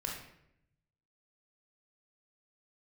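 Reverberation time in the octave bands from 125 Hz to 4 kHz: 1.4 s, 1.0 s, 0.85 s, 0.70 s, 0.70 s, 0.55 s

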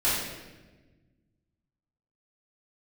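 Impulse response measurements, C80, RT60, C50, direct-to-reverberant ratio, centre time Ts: 2.5 dB, 1.2 s, -0.5 dB, -12.0 dB, 78 ms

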